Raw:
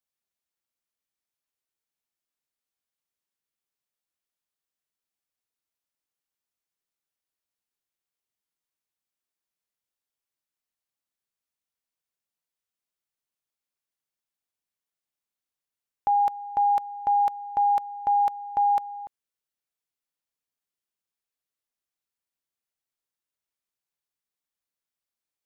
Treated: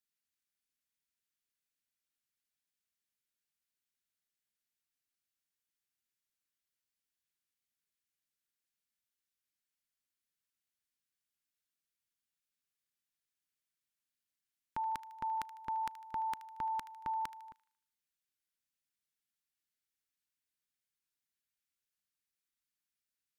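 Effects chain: FFT filter 240 Hz 0 dB, 700 Hz -17 dB, 1.4 kHz +1 dB; on a send: feedback echo behind a high-pass 83 ms, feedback 47%, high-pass 1.4 kHz, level -13.5 dB; on the sum: speed mistake 44.1 kHz file played as 48 kHz; trim -2 dB

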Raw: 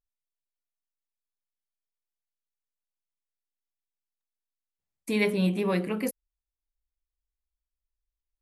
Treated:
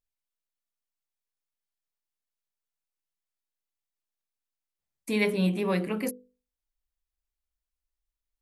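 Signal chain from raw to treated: hum notches 50/100/150/200/250/300/350/400/450/500 Hz

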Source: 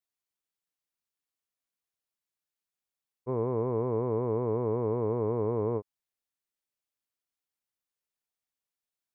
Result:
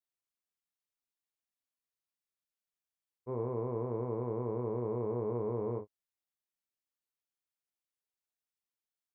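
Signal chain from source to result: early reflections 33 ms -6.5 dB, 52 ms -16 dB; trim -7 dB

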